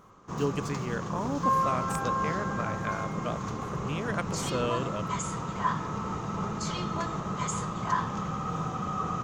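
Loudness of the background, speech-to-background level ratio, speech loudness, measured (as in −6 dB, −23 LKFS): −32.0 LKFS, −3.0 dB, −35.0 LKFS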